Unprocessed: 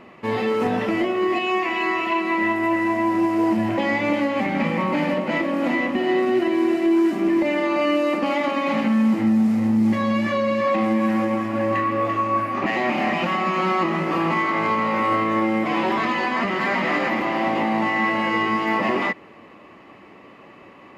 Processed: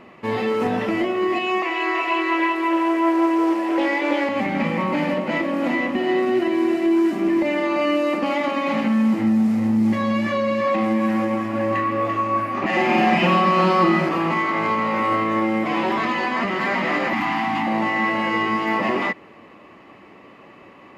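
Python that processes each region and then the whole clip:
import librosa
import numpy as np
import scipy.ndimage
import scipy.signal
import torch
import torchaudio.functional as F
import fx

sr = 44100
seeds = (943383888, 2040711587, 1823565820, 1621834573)

y = fx.chain(x, sr, fx.steep_highpass(hz=280.0, slope=72),
    fx.echo_single(ms=327, db=-4.0),
    fx.doppler_dist(depth_ms=0.1), at=(1.62, 4.29))
y = fx.chain(y, sr, fx.comb(ms=5.6, depth=0.84),
    fx.room_flutter(wall_m=7.7, rt60_s=0.6), at=(12.69, 14.09))
y = fx.chain(y, sr, fx.cheby1_bandstop(low_hz=290.0, high_hz=750.0, order=3),
    fx.env_flatten(amount_pct=100), at=(17.13, 17.67))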